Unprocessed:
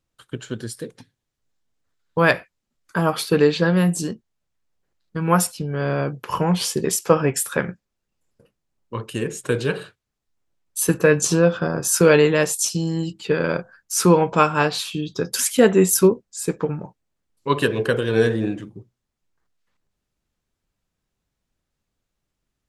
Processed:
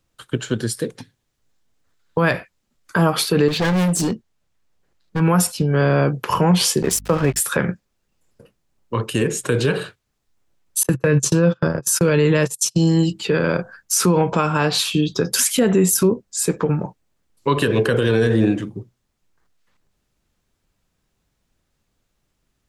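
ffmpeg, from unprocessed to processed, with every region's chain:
-filter_complex "[0:a]asettb=1/sr,asplit=3[a][b][c];[a]atrim=end=3.484[d];[b]atrim=start=3.48:end=5.2,asetpts=PTS-STARTPTS,afade=t=in:d=0.004:c=qsin,afade=t=out:st=1.716:d=0.004:c=qsin,highshelf=f=8.9k:g=-3.5,volume=24dB,asoftclip=hard,volume=-24dB[e];[c]atrim=start=5.196[f];[d][e]acrossfade=d=0.004:c1=hsin:c2=qsin[g];[g][f]acrossfade=d=0.004:c1=qsin:c2=hsin,asettb=1/sr,asplit=3[h][i][j];[h]atrim=end=6.824[k];[i]atrim=start=6.82:end=7.4,asetpts=PTS-STARTPTS,afade=t=in:d=0.004:c=qsin,afade=t=out:st=0.576:d=0.004:c=qsin,equalizer=f=74:t=o:w=0.91:g=4.5,aeval=exprs='sgn(val(0))*max(abs(val(0))-0.0237,0)':c=same,aeval=exprs='val(0)+0.00501*(sin(2*PI*50*n/s)+sin(2*PI*2*50*n/s)/2+sin(2*PI*3*50*n/s)/3+sin(2*PI*4*50*n/s)/4+sin(2*PI*5*50*n/s)/5)':c=same[l];[j]atrim=start=7.396[m];[k][l]acrossfade=d=0.004:c1=hsin:c2=qsin[n];[n][m]acrossfade=d=0.004:c1=qsin:c2=hsin,asettb=1/sr,asplit=3[o][p][q];[o]atrim=end=10.834[r];[p]atrim=start=10.83:end=12.78,asetpts=PTS-STARTPTS,afade=t=in:d=0.004:c=qsin,afade=t=out:st=1.946:d=0.004:c=qsin,agate=range=-33dB:threshold=-23dB:ratio=16:release=100:detection=peak,equalizer=f=130:w=3.9:g=7,bandreject=f=730:w=6.9[s];[q]atrim=start=12.776[t];[r][s]acrossfade=d=0.004:c1=hsin:c2=qsin[u];[u][t]acrossfade=d=0.004:c1=qsin:c2=hsin,acrossover=split=250[v][w];[w]acompressor=threshold=-22dB:ratio=2[x];[v][x]amix=inputs=2:normalize=0,alimiter=level_in=14.5dB:limit=-1dB:release=50:level=0:latency=1,volume=-6.5dB"

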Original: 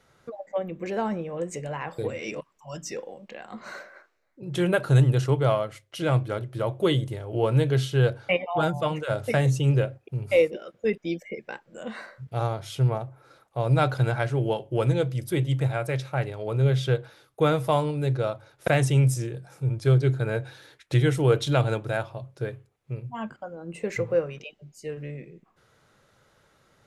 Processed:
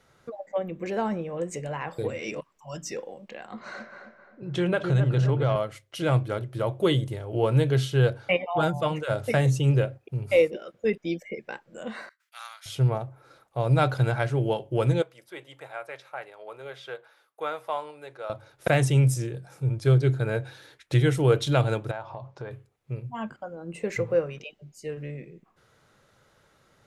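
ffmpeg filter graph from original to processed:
-filter_complex "[0:a]asettb=1/sr,asplit=3[a][b][c];[a]atrim=end=3.474[d];[b]atrim=start=3.47:end=5.56,asetpts=PTS-STARTPTS,afade=t=in:d=0.004:c=qsin,afade=t=out:st=2.086:d=0.004:c=qsin,lowpass=5.7k,asplit=2[e][f];[f]adelay=263,lowpass=f=1.7k:p=1,volume=-6dB,asplit=2[g][h];[h]adelay=263,lowpass=f=1.7k:p=1,volume=0.43,asplit=2[i][j];[j]adelay=263,lowpass=f=1.7k:p=1,volume=0.43,asplit=2[k][l];[l]adelay=263,lowpass=f=1.7k:p=1,volume=0.43,asplit=2[m][n];[n]adelay=263,lowpass=f=1.7k:p=1,volume=0.43[o];[e][g][i][k][m][o]amix=inputs=6:normalize=0,atrim=end_sample=92169,acompressor=threshold=-21dB:ratio=2:attack=3.2:release=140:knee=1:detection=peak[p];[c]atrim=start=5.556[q];[d][p]acrossfade=d=0.004:c1=hsin:c2=qsin[r];[r][q]acrossfade=d=0.004:c1=qsin:c2=hsin,asettb=1/sr,asplit=3[s][t][u];[s]atrim=end=12.094[v];[t]atrim=start=12.09:end=12.66,asetpts=PTS-STARTPTS,afade=t=in:d=0.004:c=qsin,afade=t=out:st=0.566:d=0.004:c=qsin,agate=range=-33dB:threshold=-42dB:ratio=3:release=100:detection=peak,highpass=f=1.4k:w=0.5412,highpass=f=1.4k:w=1.3066,highshelf=f=6.6k:g=7[w];[u]atrim=start=12.656[x];[v][w]acrossfade=d=0.004:c1=hsin:c2=qsin[y];[y][x]acrossfade=d=0.004:c1=qsin:c2=hsin,asettb=1/sr,asplit=3[z][aa][ab];[z]atrim=end=15.024[ac];[aa]atrim=start=15.02:end=18.3,asetpts=PTS-STARTPTS,afade=t=in:d=0.004:c=qsin,afade=t=out:st=3.276:d=0.004:c=qsin,acrossover=split=6100[ad][ae];[ae]acompressor=threshold=-54dB:ratio=4:attack=1:release=60[af];[ad][af]amix=inputs=2:normalize=0,highpass=870,equalizer=f=5.8k:w=0.34:g=-11[ag];[ab]atrim=start=18.296[ah];[ac][ag]acrossfade=d=0.004:c1=hsin:c2=qsin[ai];[ai][ah]acrossfade=d=0.004:c1=qsin:c2=hsin,asettb=1/sr,asplit=3[aj][ak][al];[aj]atrim=end=21.914[am];[ak]atrim=start=21.91:end=22.51,asetpts=PTS-STARTPTS,afade=t=in:d=0.004:c=qsin,afade=t=out:st=0.596:d=0.004:c=qsin,equalizer=f=920:t=o:w=0.95:g=13.5,acompressor=threshold=-35dB:ratio=3:attack=3.2:release=140:knee=1:detection=peak,lowpass=f=6.6k:w=0.5412,lowpass=f=6.6k:w=1.3066[an];[al]atrim=start=22.506[ao];[am][an]acrossfade=d=0.004:c1=hsin:c2=qsin[ap];[ap][ao]acrossfade=d=0.004:c1=qsin:c2=hsin"

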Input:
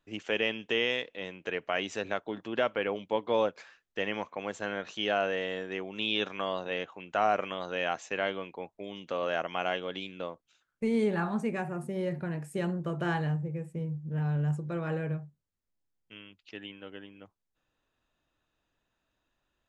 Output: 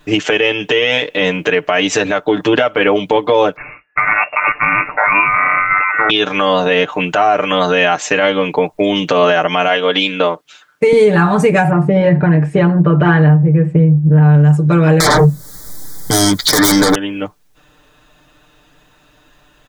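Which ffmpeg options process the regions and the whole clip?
-filter_complex "[0:a]asettb=1/sr,asplit=3[a][b][c];[a]atrim=end=3.564[d];[b]atrim=start=3.56:end=6.1,asetpts=PTS-STARTPTS,afade=t=in:d=0.004:c=qsin,afade=t=out:st=2.536:d=0.004:c=qsin,aeval=exprs='val(0)*sin(2*PI*1100*n/s)':c=same,lowpass=f=2.4k:t=q:w=0.5098,lowpass=f=2.4k:t=q:w=0.6013,lowpass=f=2.4k:t=q:w=0.9,lowpass=f=2.4k:t=q:w=2.563,afreqshift=-2800[e];[c]atrim=start=6.096[f];[d][e]acrossfade=d=0.004:c1=hsin:c2=qsin[g];[g][f]acrossfade=d=0.004:c1=qsin:c2=hsin,asettb=1/sr,asplit=3[h][i][j];[h]atrim=end=9.684[k];[i]atrim=start=9.68:end=10.93,asetpts=PTS-STARTPTS,afade=t=in:d=0.004:c=qsin,afade=t=out:st=1.246:d=0.004:c=qsin,highpass=f=470:p=1,highshelf=f=5.9k:g=-7[l];[j]atrim=start=10.926[m];[k][l]acrossfade=d=0.004:c1=hsin:c2=qsin[n];[n][m]acrossfade=d=0.004:c1=qsin:c2=hsin,asettb=1/sr,asplit=3[o][p][q];[o]atrim=end=11.704[r];[p]atrim=start=11.7:end=14.34,asetpts=PTS-STARTPTS,afade=t=in:d=0.004:c=qsin,afade=t=out:st=2.636:d=0.004:c=qsin,lowpass=2.3k,bandreject=f=183.7:t=h:w=4,bandreject=f=367.4:t=h:w=4[s];[q]atrim=start=14.336[t];[r][s]acrossfade=d=0.004:c1=hsin:c2=qsin[u];[u][t]acrossfade=d=0.004:c1=qsin:c2=hsin,asettb=1/sr,asplit=3[v][w][x];[v]atrim=end=15.004[y];[w]atrim=start=15:end=16.95,asetpts=PTS-STARTPTS,afade=t=in:d=0.004:c=qsin,afade=t=out:st=1.946:d=0.004:c=qsin,aemphasis=mode=production:type=cd,aeval=exprs='0.0531*sin(PI/2*10*val(0)/0.0531)':c=same,asuperstop=centerf=2700:order=4:qfactor=1.7[z];[x]atrim=start=16.946[aa];[y][z]acrossfade=d=0.004:c1=hsin:c2=qsin[ab];[ab][aa]acrossfade=d=0.004:c1=qsin:c2=hsin,aecho=1:1:6.7:0.9,acompressor=threshold=-35dB:ratio=4,alimiter=level_in=27.5dB:limit=-1dB:release=50:level=0:latency=1,volume=-1dB"

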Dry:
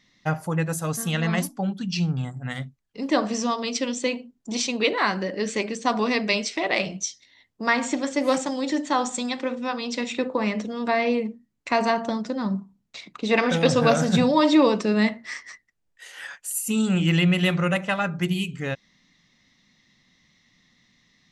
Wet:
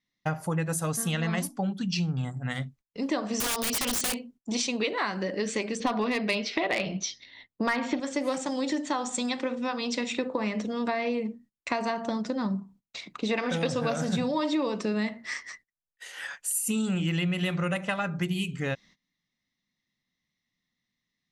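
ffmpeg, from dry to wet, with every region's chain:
-filter_complex "[0:a]asettb=1/sr,asplit=3[a][b][c];[a]atrim=end=3.404[d];[b]atrim=start=3.4:end=4.19,asetpts=PTS-STARTPTS,afade=t=in:d=0.004:c=qsin,afade=t=out:st=0.786:d=0.004:c=qsin,highshelf=f=3k:g=11.5,aeval=exprs='(mod(10.6*val(0)+1,2)-1)/10.6':c=same[e];[c]atrim=start=4.186[f];[d][e]acrossfade=d=0.004:c1=hsin:c2=qsin[g];[g][f]acrossfade=d=0.004:c1=qsin:c2=hsin,asettb=1/sr,asplit=3[h][i][j];[h]atrim=end=5.804[k];[i]atrim=start=5.8:end=8,asetpts=PTS-STARTPTS,afade=t=in:d=0.004:c=qsin,afade=t=out:st=2.196:d=0.004:c=qsin,lowpass=f=4.5k:w=0.5412,lowpass=f=4.5k:w=1.3066,acontrast=80,asoftclip=type=hard:threshold=-8dB[l];[j]atrim=start=7.996[m];[k][l]acrossfade=d=0.004:c1=hsin:c2=qsin[n];[n][m]acrossfade=d=0.004:c1=qsin:c2=hsin,agate=range=-21dB:threshold=-51dB:ratio=16:detection=peak,adynamicequalizer=threshold=0.00141:dfrequency=9300:dqfactor=7.3:tfrequency=9300:tqfactor=7.3:attack=5:release=100:ratio=0.375:range=3.5:mode=boostabove:tftype=bell,acompressor=threshold=-25dB:ratio=6"

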